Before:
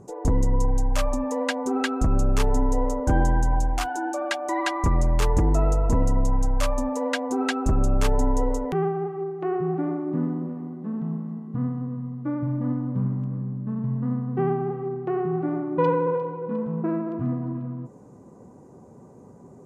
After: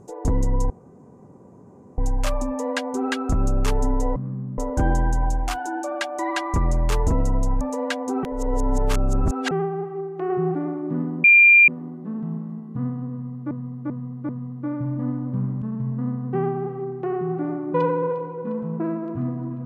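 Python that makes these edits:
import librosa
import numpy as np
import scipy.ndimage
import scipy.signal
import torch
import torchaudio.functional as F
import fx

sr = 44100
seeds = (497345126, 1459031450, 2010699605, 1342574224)

y = fx.edit(x, sr, fx.insert_room_tone(at_s=0.7, length_s=1.28),
    fx.cut(start_s=5.38, length_s=0.52),
    fx.cut(start_s=6.43, length_s=0.41),
    fx.reverse_span(start_s=7.46, length_s=1.28),
    fx.clip_gain(start_s=9.53, length_s=0.25, db=3.0),
    fx.insert_tone(at_s=10.47, length_s=0.44, hz=2390.0, db=-8.5),
    fx.repeat(start_s=11.91, length_s=0.39, count=4),
    fx.move(start_s=13.24, length_s=0.42, to_s=2.88), tone=tone)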